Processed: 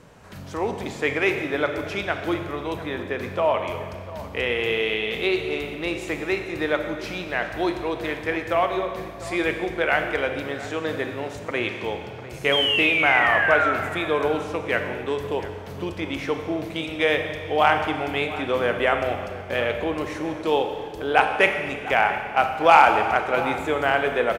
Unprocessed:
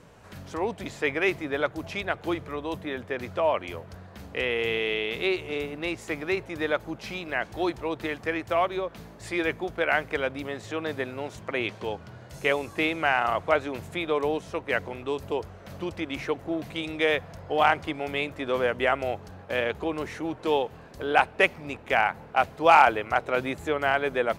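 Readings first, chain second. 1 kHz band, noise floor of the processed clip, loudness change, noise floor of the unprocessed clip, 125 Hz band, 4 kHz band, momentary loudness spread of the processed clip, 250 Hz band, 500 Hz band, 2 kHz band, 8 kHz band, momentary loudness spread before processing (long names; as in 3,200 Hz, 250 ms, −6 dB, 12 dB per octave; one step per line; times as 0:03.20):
+4.0 dB, −37 dBFS, +4.0 dB, −48 dBFS, +4.5 dB, +6.5 dB, 12 LU, +3.5 dB, +3.5 dB, +5.0 dB, +3.5 dB, 11 LU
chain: sound drawn into the spectrogram fall, 0:12.52–0:13.72, 1,300–3,300 Hz −25 dBFS
slap from a distant wall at 120 metres, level −15 dB
four-comb reverb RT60 1.7 s, combs from 29 ms, DRR 5.5 dB
level +2.5 dB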